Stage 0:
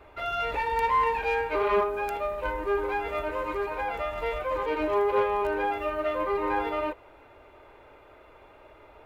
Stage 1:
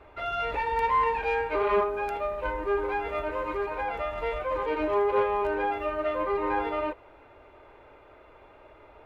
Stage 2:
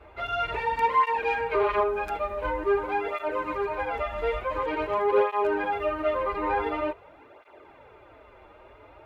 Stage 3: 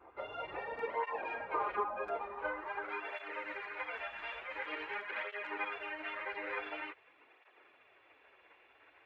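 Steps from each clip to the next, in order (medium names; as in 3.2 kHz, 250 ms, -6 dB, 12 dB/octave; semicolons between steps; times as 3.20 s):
low-pass 3.9 kHz 6 dB/octave
cancelling through-zero flanger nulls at 0.47 Hz, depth 7.8 ms; trim +4.5 dB
band-pass sweep 640 Hz -> 1.8 kHz, 1.98–3.17 s; spectral gate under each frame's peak -10 dB weak; trim +5.5 dB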